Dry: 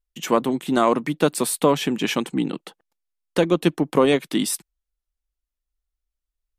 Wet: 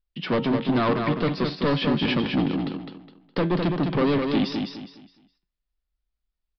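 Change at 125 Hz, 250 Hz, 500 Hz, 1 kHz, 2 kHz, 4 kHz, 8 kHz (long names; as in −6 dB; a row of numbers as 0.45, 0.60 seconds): +3.5 dB, −0.5 dB, −5.0 dB, −4.0 dB, −1.0 dB, −1.5 dB, below −30 dB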